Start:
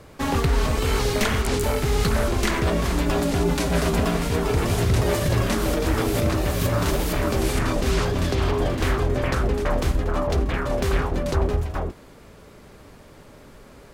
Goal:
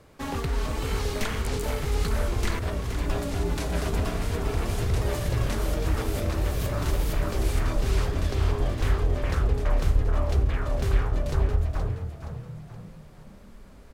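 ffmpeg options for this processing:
-filter_complex "[0:a]asettb=1/sr,asplit=3[a][b][c];[a]atrim=end=2.594[d];[b]atrim=start=2.59:end=3.04,asetpts=PTS-STARTPTS,afade=t=in:d=0.004:c=qsin,afade=t=out:st=0.446:d=0.004:c=qsin,agate=range=-33dB:threshold=-17dB:ratio=3:detection=peak[e];[c]atrim=start=3.036[f];[d][e]acrossfade=d=0.004:c1=hsin:c2=qsin[g];[g][f]acrossfade=d=0.004:c1=qsin:c2=hsin,asubboost=boost=4:cutoff=67,asplit=6[h][i][j][k][l][m];[i]adelay=472,afreqshift=37,volume=-9dB[n];[j]adelay=944,afreqshift=74,volume=-16.7dB[o];[k]adelay=1416,afreqshift=111,volume=-24.5dB[p];[l]adelay=1888,afreqshift=148,volume=-32.2dB[q];[m]adelay=2360,afreqshift=185,volume=-40dB[r];[h][n][o][p][q][r]amix=inputs=6:normalize=0,volume=-8dB"

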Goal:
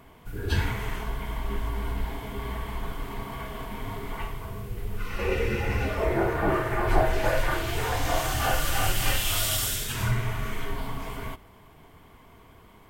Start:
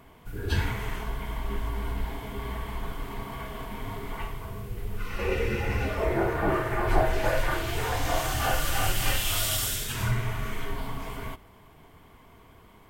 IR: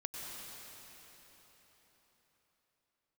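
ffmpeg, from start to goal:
-af "volume=1dB"

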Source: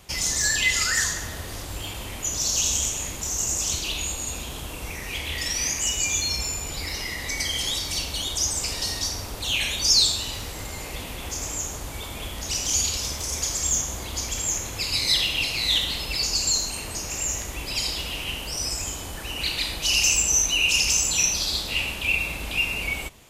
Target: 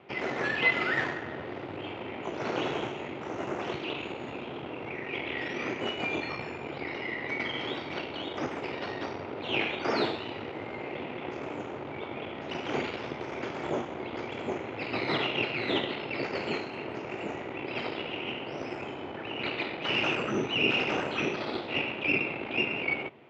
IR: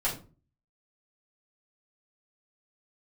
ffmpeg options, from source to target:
-af "aeval=exprs='0.447*(cos(1*acos(clip(val(0)/0.447,-1,1)))-cos(1*PI/2))+0.1*(cos(6*acos(clip(val(0)/0.447,-1,1)))-cos(6*PI/2))':c=same,highpass=f=140:w=0.5412,highpass=f=140:w=1.3066,equalizer=f=180:t=q:w=4:g=-8,equalizer=f=370:t=q:w=4:g=6,equalizer=f=1.1k:t=q:w=4:g=-5,equalizer=f=1.7k:t=q:w=4:g=-6,lowpass=f=2.3k:w=0.5412,lowpass=f=2.3k:w=1.3066,volume=1.5dB"

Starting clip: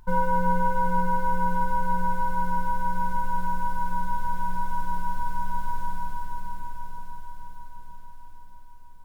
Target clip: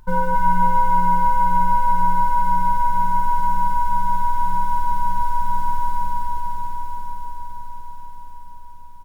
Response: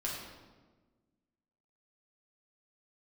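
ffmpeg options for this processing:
-filter_complex "[0:a]asuperstop=centerf=710:order=4:qfactor=6.4,asplit=2[a][b];[b]aecho=0:1:271|542|813|1084|1355:0.708|0.269|0.102|0.0388|0.0148[c];[a][c]amix=inputs=2:normalize=0,volume=3.5dB"

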